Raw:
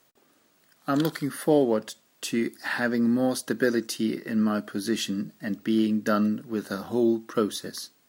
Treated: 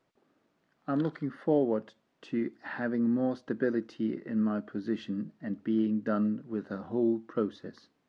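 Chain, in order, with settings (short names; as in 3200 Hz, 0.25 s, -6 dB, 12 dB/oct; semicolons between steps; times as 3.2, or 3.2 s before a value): added noise violet -53 dBFS; tape spacing loss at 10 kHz 40 dB; gain -3.5 dB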